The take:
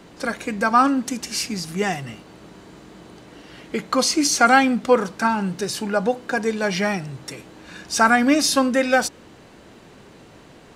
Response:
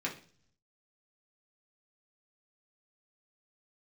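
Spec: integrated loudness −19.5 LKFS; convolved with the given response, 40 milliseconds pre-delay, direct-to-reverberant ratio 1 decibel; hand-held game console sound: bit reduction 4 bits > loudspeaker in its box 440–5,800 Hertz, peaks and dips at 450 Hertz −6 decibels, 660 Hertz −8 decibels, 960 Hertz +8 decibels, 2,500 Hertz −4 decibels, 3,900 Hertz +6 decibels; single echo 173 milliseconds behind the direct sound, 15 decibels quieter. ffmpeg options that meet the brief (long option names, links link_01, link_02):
-filter_complex "[0:a]aecho=1:1:173:0.178,asplit=2[link_01][link_02];[1:a]atrim=start_sample=2205,adelay=40[link_03];[link_02][link_03]afir=irnorm=-1:irlink=0,volume=-5dB[link_04];[link_01][link_04]amix=inputs=2:normalize=0,acrusher=bits=3:mix=0:aa=0.000001,highpass=440,equalizer=frequency=450:width_type=q:width=4:gain=-6,equalizer=frequency=660:width_type=q:width=4:gain=-8,equalizer=frequency=960:width_type=q:width=4:gain=8,equalizer=frequency=2500:width_type=q:width=4:gain=-4,equalizer=frequency=3900:width_type=q:width=4:gain=6,lowpass=frequency=5800:width=0.5412,lowpass=frequency=5800:width=1.3066,volume=-0.5dB"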